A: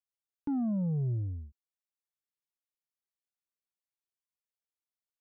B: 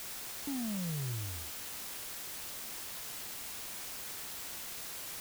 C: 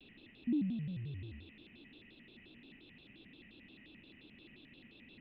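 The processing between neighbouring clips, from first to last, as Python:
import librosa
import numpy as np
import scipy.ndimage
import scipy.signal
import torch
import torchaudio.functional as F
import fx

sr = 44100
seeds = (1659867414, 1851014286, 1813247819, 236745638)

y1 = fx.quant_dither(x, sr, seeds[0], bits=6, dither='triangular')
y1 = y1 * 10.0 ** (-7.0 / 20.0)
y2 = fx.formant_cascade(y1, sr, vowel='i')
y2 = fx.vibrato_shape(y2, sr, shape='square', rate_hz=5.7, depth_cents=250.0)
y2 = y2 * 10.0 ** (6.0 / 20.0)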